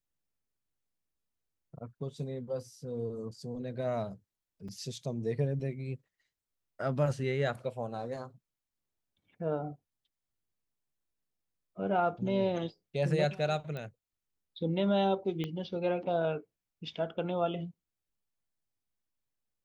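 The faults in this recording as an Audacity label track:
4.680000	4.690000	drop-out 5.3 ms
13.770000	13.770000	click −27 dBFS
15.440000	15.440000	click −23 dBFS

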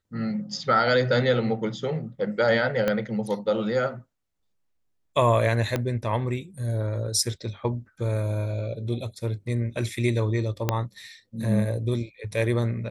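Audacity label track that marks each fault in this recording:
2.880000	2.880000	click −11 dBFS
5.760000	5.760000	click −12 dBFS
10.690000	10.690000	click −8 dBFS

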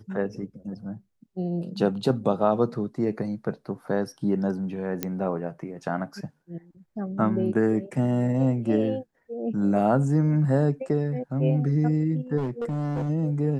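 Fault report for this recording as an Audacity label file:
5.030000	5.030000	click −11 dBFS
12.370000	13.100000	clipping −24.5 dBFS

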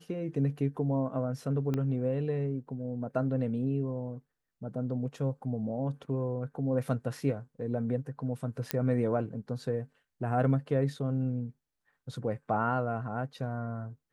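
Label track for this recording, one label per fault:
1.740000	1.740000	click −20 dBFS
8.710000	8.710000	click −13 dBFS

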